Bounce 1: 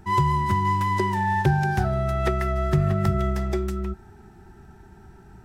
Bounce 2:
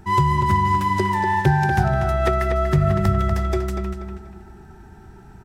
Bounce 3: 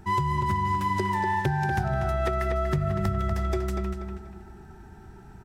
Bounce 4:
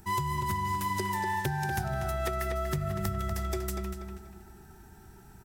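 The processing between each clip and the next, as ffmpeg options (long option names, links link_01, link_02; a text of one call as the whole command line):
ffmpeg -i in.wav -filter_complex "[0:a]asplit=2[link_01][link_02];[link_02]adelay=241,lowpass=frequency=4600:poles=1,volume=-6dB,asplit=2[link_03][link_04];[link_04]adelay=241,lowpass=frequency=4600:poles=1,volume=0.38,asplit=2[link_05][link_06];[link_06]adelay=241,lowpass=frequency=4600:poles=1,volume=0.38,asplit=2[link_07][link_08];[link_08]adelay=241,lowpass=frequency=4600:poles=1,volume=0.38,asplit=2[link_09][link_10];[link_10]adelay=241,lowpass=frequency=4600:poles=1,volume=0.38[link_11];[link_01][link_03][link_05][link_07][link_09][link_11]amix=inputs=6:normalize=0,volume=3dB" out.wav
ffmpeg -i in.wav -af "acompressor=threshold=-19dB:ratio=6,volume=-3dB" out.wav
ffmpeg -i in.wav -af "aemphasis=mode=production:type=75fm,volume=-5dB" out.wav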